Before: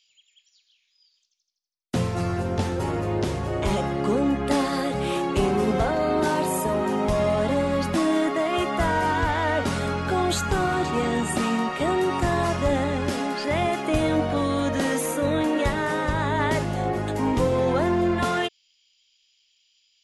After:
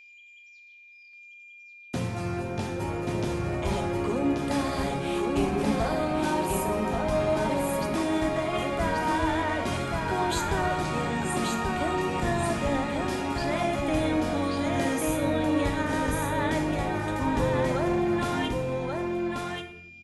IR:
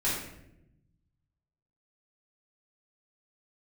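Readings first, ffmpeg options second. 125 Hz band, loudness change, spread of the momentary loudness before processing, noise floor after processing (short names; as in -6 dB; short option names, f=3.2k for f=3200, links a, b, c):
-3.5 dB, -3.5 dB, 4 LU, -52 dBFS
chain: -filter_complex "[0:a]asplit=2[a][b];[1:a]atrim=start_sample=2205,highshelf=f=10k:g=11[c];[b][c]afir=irnorm=-1:irlink=0,volume=-14.5dB[d];[a][d]amix=inputs=2:normalize=0,aeval=exprs='val(0)+0.00794*sin(2*PI*2400*n/s)':c=same,aecho=1:1:1133:0.668,volume=-7dB"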